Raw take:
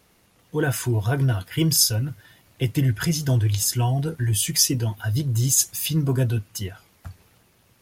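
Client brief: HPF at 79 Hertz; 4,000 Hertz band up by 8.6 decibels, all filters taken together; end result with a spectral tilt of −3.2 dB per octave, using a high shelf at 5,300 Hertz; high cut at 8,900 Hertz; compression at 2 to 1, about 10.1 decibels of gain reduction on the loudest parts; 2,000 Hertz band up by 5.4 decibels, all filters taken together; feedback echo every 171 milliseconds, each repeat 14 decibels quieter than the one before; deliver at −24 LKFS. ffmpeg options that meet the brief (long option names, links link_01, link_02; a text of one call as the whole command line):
ffmpeg -i in.wav -af "highpass=79,lowpass=8900,equalizer=frequency=2000:width_type=o:gain=5,equalizer=frequency=4000:width_type=o:gain=9,highshelf=frequency=5300:gain=4.5,acompressor=threshold=-27dB:ratio=2,aecho=1:1:171|342:0.2|0.0399,volume=2dB" out.wav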